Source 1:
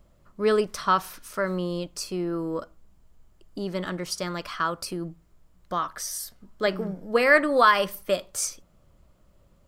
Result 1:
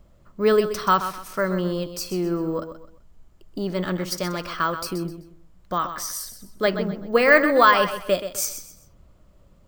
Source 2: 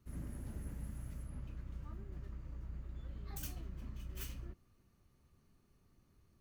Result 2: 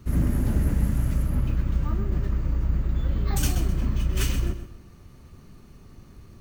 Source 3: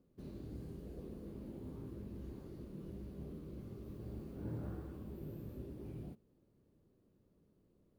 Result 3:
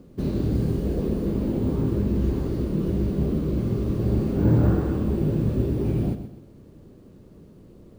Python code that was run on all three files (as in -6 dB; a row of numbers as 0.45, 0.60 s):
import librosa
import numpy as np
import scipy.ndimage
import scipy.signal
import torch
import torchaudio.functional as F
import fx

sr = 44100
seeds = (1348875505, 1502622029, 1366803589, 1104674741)

p1 = np.repeat(scipy.signal.resample_poly(x, 1, 2), 2)[:len(x)]
p2 = fx.low_shelf(p1, sr, hz=370.0, db=2.5)
p3 = p2 + fx.echo_feedback(p2, sr, ms=128, feedback_pct=31, wet_db=-10.5, dry=0)
y = p3 * 10.0 ** (-24 / 20.0) / np.sqrt(np.mean(np.square(p3)))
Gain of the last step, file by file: +2.5, +20.0, +21.5 dB